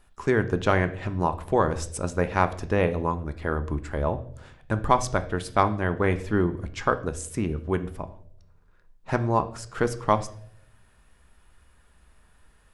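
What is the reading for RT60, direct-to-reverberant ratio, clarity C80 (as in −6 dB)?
0.70 s, 9.0 dB, 18.0 dB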